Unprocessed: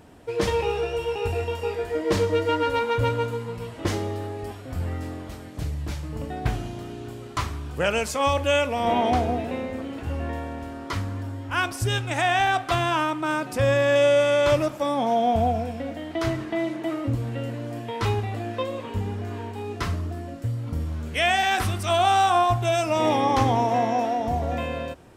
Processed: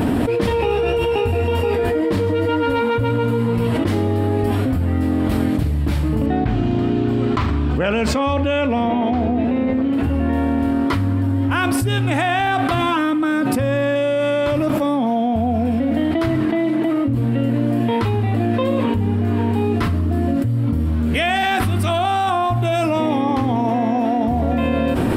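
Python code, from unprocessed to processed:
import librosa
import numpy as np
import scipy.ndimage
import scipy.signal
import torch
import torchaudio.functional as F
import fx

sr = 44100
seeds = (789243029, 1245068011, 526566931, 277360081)

y = fx.moving_average(x, sr, points=4, at=(6.26, 9.93))
y = fx.comb(y, sr, ms=3.8, depth=0.65, at=(12.79, 13.44))
y = fx.graphic_eq_15(y, sr, hz=(100, 250, 6300), db=(4, 11, -11))
y = fx.env_flatten(y, sr, amount_pct=100)
y = y * 10.0 ** (-5.0 / 20.0)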